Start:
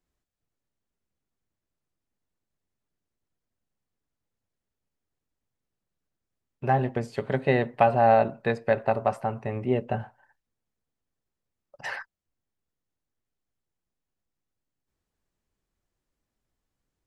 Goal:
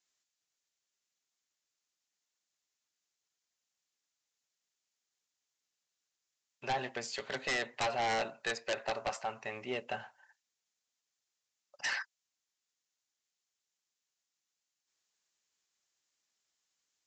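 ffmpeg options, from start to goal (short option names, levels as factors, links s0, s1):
-af "aderivative,aresample=16000,aeval=exprs='0.0708*sin(PI/2*5.01*val(0)/0.0708)':c=same,aresample=44100,volume=0.562"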